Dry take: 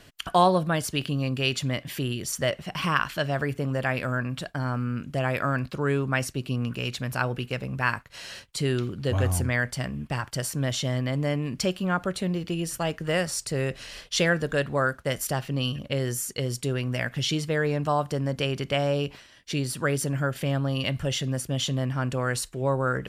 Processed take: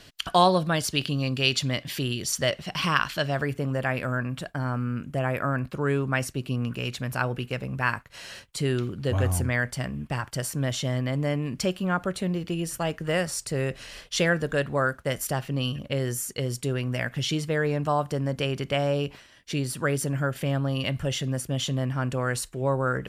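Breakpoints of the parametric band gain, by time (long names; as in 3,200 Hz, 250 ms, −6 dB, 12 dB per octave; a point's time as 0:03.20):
parametric band 4,400 Hz 1.2 octaves
0:03.01 +6.5 dB
0:03.87 −4.5 dB
0:04.92 −4.5 dB
0:05.54 −14.5 dB
0:05.85 −2.5 dB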